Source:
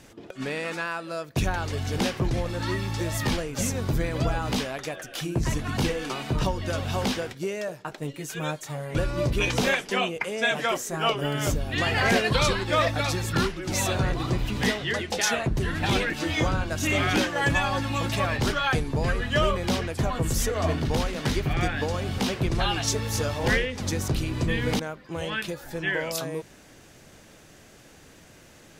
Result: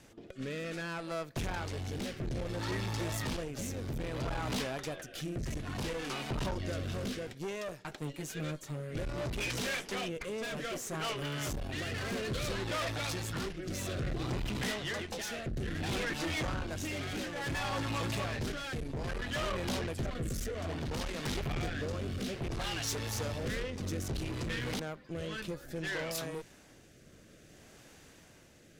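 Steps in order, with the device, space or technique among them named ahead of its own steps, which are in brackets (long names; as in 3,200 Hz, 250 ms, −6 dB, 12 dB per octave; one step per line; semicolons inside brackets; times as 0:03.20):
overdriven rotary cabinet (tube saturation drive 31 dB, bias 0.7; rotating-speaker cabinet horn 0.6 Hz)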